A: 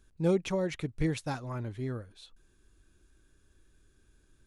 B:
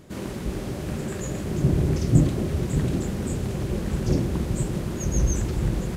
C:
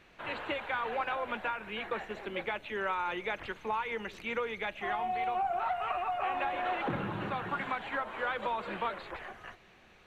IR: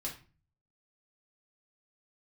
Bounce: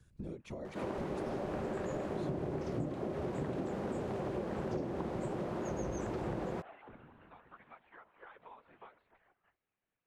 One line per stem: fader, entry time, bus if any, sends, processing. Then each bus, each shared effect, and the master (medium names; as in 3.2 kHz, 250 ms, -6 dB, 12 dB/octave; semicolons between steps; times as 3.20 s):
+0.5 dB, 0.00 s, bus A, no send, harmonic-percussive split percussive -8 dB; compression 2.5:1, threshold -37 dBFS, peak gain reduction 9.5 dB
+3.0 dB, 0.65 s, no bus, no send, bit crusher 8-bit; band-pass filter 730 Hz, Q 1.1
-19.5 dB, 0.00 s, bus A, no send, low-pass 2.9 kHz; upward expansion 1.5:1, over -52 dBFS; auto duck -17 dB, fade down 0.85 s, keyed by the first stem
bus A: 0.0 dB, whisper effect; compression 2.5:1, threshold -44 dBFS, peak gain reduction 9.5 dB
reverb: none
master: compression 12:1, threshold -33 dBFS, peak gain reduction 12.5 dB